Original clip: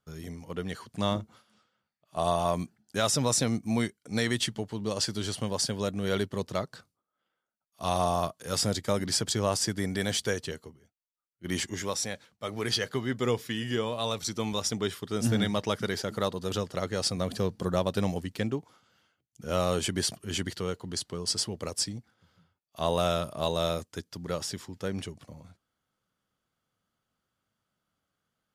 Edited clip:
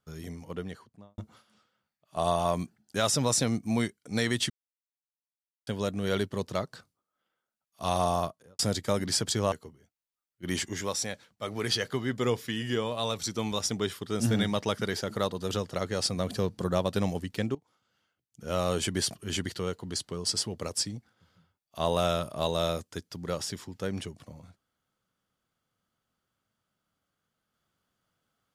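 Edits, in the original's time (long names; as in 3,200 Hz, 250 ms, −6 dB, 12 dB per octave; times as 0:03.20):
0:00.38–0:01.18: fade out and dull
0:04.50–0:05.67: silence
0:08.15–0:08.59: fade out and dull
0:09.52–0:10.53: remove
0:18.56–0:19.85: fade in linear, from −16.5 dB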